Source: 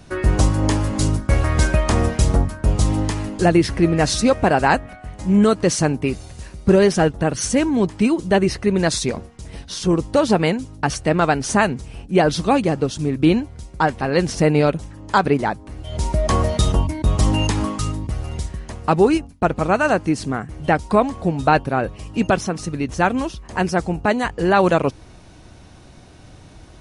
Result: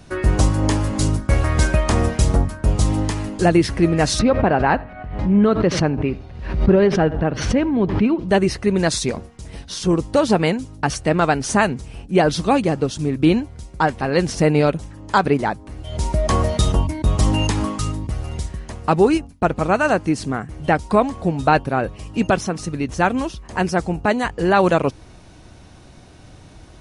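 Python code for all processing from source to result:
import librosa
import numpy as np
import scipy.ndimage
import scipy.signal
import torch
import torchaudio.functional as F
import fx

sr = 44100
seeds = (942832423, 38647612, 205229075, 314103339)

y = fx.chain(x, sr, fx.air_absorb(metres=330.0),
    fx.echo_feedback(ms=82, feedback_pct=26, wet_db=-22),
    fx.pre_swell(db_per_s=69.0), at=(4.19, 8.29))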